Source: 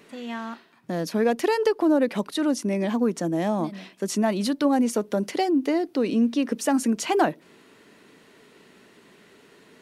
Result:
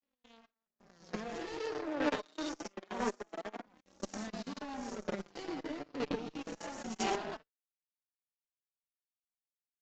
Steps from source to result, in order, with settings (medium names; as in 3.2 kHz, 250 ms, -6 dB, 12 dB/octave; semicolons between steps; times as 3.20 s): reverse spectral sustain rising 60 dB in 0.79 s; delay 126 ms -5 dB; level held to a coarse grid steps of 11 dB; power-law waveshaper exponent 3; saturation -25.5 dBFS, distortion -10 dB; 1.60–3.66 s: high-pass 260 Hz 24 dB/octave; peak limiter -31 dBFS, peak gain reduction 6 dB; one-sided clip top -40.5 dBFS, bottom -35 dBFS; square tremolo 1 Hz, depth 60%, duty 15%; flange 0.25 Hz, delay 3.5 ms, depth 3.5 ms, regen +9%; trim +16 dB; AAC 64 kbps 16 kHz